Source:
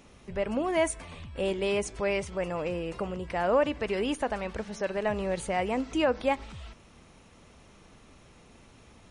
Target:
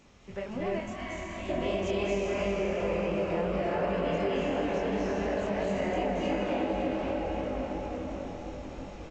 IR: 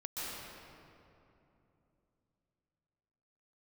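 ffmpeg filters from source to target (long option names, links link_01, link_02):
-filter_complex "[0:a]alimiter=limit=-22.5dB:level=0:latency=1:release=344,asplit=2[link_01][link_02];[link_02]adelay=540,lowpass=frequency=3500:poles=1,volume=-6dB,asplit=2[link_03][link_04];[link_04]adelay=540,lowpass=frequency=3500:poles=1,volume=0.5,asplit=2[link_05][link_06];[link_06]adelay=540,lowpass=frequency=3500:poles=1,volume=0.5,asplit=2[link_07][link_08];[link_08]adelay=540,lowpass=frequency=3500:poles=1,volume=0.5,asplit=2[link_09][link_10];[link_10]adelay=540,lowpass=frequency=3500:poles=1,volume=0.5,asplit=2[link_11][link_12];[link_12]adelay=540,lowpass=frequency=3500:poles=1,volume=0.5[link_13];[link_01][link_03][link_05][link_07][link_09][link_11][link_13]amix=inputs=7:normalize=0[link_14];[1:a]atrim=start_sample=2205,asetrate=23814,aresample=44100[link_15];[link_14][link_15]afir=irnorm=-1:irlink=0,flanger=delay=20:depth=4.4:speed=2.8,acompressor=threshold=-31dB:ratio=2.5,asettb=1/sr,asplit=3[link_16][link_17][link_18];[link_16]atrim=end=0.804[link_19];[link_17]atrim=start=0.8:end=1.49,asetpts=PTS-STARTPTS,afade=type=in:duration=0.004:curve=qsin,afade=type=out:start_time=0.686:duration=0.004:curve=qsin,equalizer=frequency=450:width=0.89:gain=-14[link_20];[link_18]atrim=start=1.486[link_21];[link_19][link_20]acrossfade=duration=0.004:curve1=hsin:curve2=qsin[link_22];[link_22][link_21]acrossfade=duration=0.004:curve1=qsin:curve2=hsin,volume=2.5dB" -ar 16000 -c:a g722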